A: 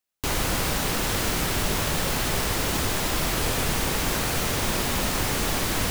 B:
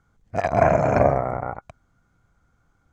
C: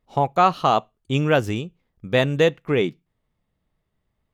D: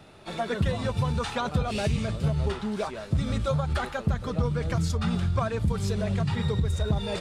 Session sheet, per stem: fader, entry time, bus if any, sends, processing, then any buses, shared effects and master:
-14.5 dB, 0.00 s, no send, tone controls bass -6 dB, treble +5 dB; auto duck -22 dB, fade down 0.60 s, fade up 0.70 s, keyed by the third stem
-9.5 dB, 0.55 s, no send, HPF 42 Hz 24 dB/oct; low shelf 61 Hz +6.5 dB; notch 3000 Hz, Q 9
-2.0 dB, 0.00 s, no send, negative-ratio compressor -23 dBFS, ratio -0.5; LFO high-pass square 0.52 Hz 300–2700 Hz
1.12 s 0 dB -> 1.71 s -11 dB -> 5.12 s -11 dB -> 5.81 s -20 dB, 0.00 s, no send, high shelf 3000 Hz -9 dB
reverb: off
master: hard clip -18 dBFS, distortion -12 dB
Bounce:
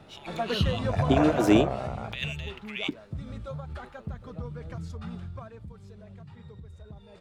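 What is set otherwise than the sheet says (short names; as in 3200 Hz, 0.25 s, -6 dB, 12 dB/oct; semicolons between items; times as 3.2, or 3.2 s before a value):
stem A: muted; master: missing hard clip -18 dBFS, distortion -12 dB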